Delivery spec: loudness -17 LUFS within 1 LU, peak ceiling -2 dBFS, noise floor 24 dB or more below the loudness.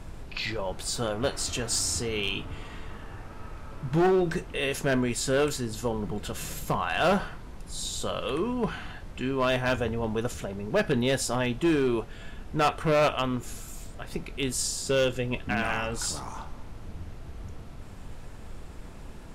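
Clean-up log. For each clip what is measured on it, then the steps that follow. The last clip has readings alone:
clipped 1.0%; flat tops at -18.5 dBFS; noise floor -43 dBFS; noise floor target -52 dBFS; loudness -28.0 LUFS; peak -18.5 dBFS; loudness target -17.0 LUFS
-> clip repair -18.5 dBFS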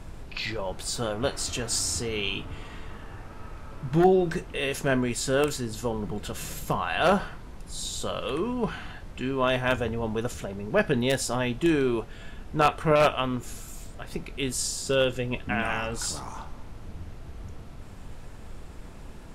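clipped 0.0%; noise floor -43 dBFS; noise floor target -51 dBFS
-> noise print and reduce 8 dB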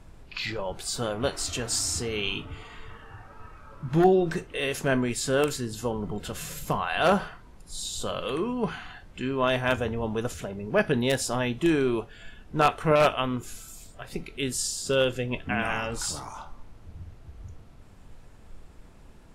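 noise floor -50 dBFS; noise floor target -51 dBFS
-> noise print and reduce 6 dB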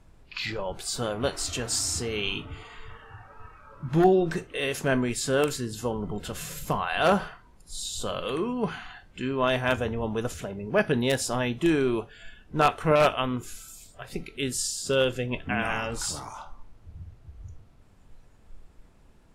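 noise floor -56 dBFS; loudness -27.0 LUFS; peak -9.5 dBFS; loudness target -17.0 LUFS
-> gain +10 dB; limiter -2 dBFS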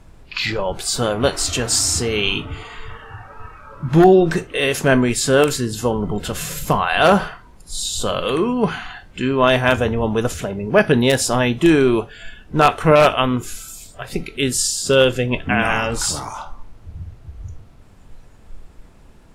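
loudness -17.5 LUFS; peak -2.0 dBFS; noise floor -46 dBFS

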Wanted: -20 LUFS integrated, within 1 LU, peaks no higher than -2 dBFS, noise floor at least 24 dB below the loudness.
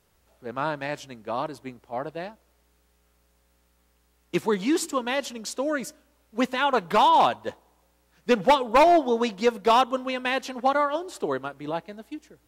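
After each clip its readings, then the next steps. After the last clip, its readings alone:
clipped 0.5%; flat tops at -12.5 dBFS; loudness -24.5 LUFS; peak -12.5 dBFS; loudness target -20.0 LUFS
-> clip repair -12.5 dBFS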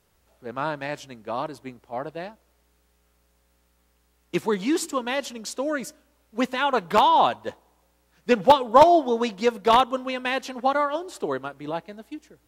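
clipped 0.0%; loudness -23.0 LUFS; peak -3.5 dBFS; loudness target -20.0 LUFS
-> gain +3 dB; limiter -2 dBFS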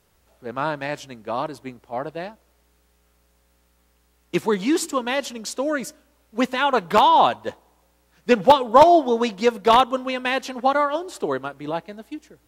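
loudness -20.5 LUFS; peak -2.0 dBFS; noise floor -63 dBFS

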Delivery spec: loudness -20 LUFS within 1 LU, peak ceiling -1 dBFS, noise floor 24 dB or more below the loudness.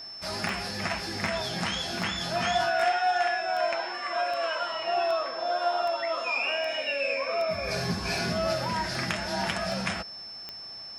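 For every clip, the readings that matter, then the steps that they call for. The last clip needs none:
clicks 14; steady tone 5300 Hz; tone level -39 dBFS; loudness -28.5 LUFS; peak -14.0 dBFS; loudness target -20.0 LUFS
-> de-click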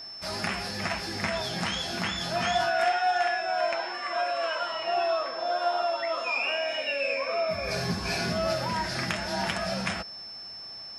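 clicks 0; steady tone 5300 Hz; tone level -39 dBFS
-> notch 5300 Hz, Q 30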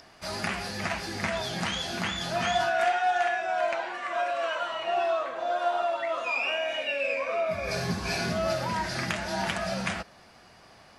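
steady tone none; loudness -29.0 LUFS; peak -15.0 dBFS; loudness target -20.0 LUFS
-> gain +9 dB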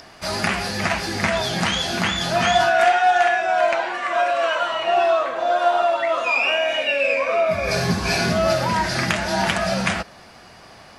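loudness -20.0 LUFS; peak -6.0 dBFS; noise floor -45 dBFS

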